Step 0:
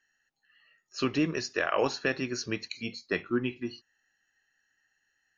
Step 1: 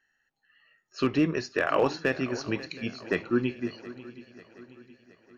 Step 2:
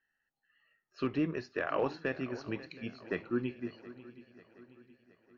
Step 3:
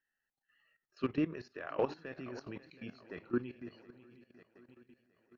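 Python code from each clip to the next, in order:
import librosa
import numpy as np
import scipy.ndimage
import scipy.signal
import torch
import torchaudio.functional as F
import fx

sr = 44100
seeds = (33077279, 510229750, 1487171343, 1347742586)

y1 = fx.lowpass(x, sr, hz=2200.0, slope=6)
y1 = np.clip(y1, -10.0 ** (-18.0 / 20.0), 10.0 ** (-18.0 / 20.0))
y1 = fx.echo_swing(y1, sr, ms=721, ratio=3, feedback_pct=45, wet_db=-17)
y1 = y1 * 10.0 ** (3.5 / 20.0)
y2 = fx.air_absorb(y1, sr, metres=170.0)
y2 = y2 * 10.0 ** (-7.0 / 20.0)
y3 = fx.level_steps(y2, sr, step_db=15)
y3 = y3 * 10.0 ** (1.5 / 20.0)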